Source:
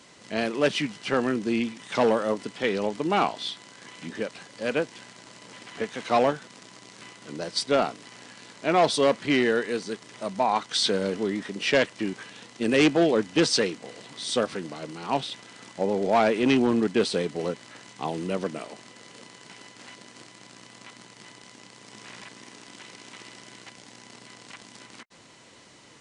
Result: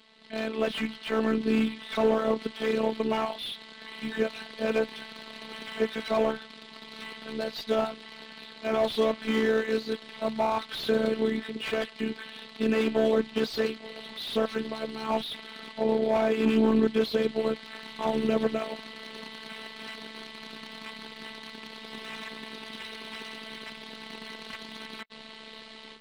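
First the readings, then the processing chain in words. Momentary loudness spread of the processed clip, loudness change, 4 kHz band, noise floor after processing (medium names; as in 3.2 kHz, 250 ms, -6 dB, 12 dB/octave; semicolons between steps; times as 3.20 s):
16 LU, -3.5 dB, -4.5 dB, -48 dBFS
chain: resonant high shelf 5 kHz -8.5 dB, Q 3; ring modulator 35 Hz; level rider gain up to 13 dB; peak limiter -7 dBFS, peak gain reduction 6 dB; robot voice 220 Hz; slew-rate limiter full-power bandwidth 95 Hz; trim -2.5 dB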